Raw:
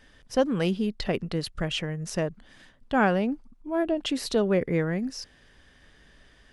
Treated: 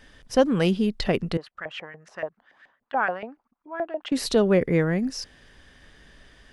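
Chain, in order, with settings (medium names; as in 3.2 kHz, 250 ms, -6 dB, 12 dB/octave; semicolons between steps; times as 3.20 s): 1.37–4.12 s: LFO band-pass saw up 7 Hz 630–2000 Hz; trim +4 dB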